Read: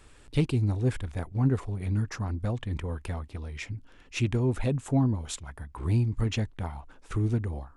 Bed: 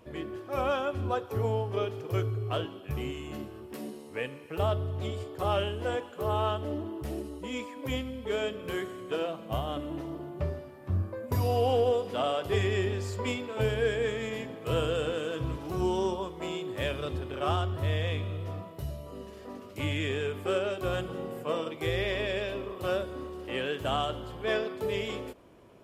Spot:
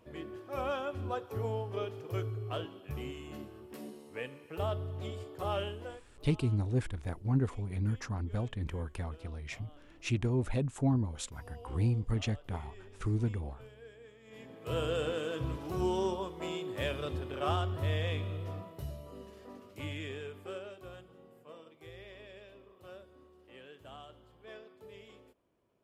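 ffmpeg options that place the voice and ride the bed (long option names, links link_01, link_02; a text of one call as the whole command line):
ffmpeg -i stem1.wav -i stem2.wav -filter_complex "[0:a]adelay=5900,volume=-4.5dB[link_01];[1:a]volume=16dB,afade=type=out:start_time=5.69:duration=0.32:silence=0.112202,afade=type=in:start_time=14.24:duration=0.71:silence=0.0794328,afade=type=out:start_time=18.35:duration=2.7:silence=0.133352[link_02];[link_01][link_02]amix=inputs=2:normalize=0" out.wav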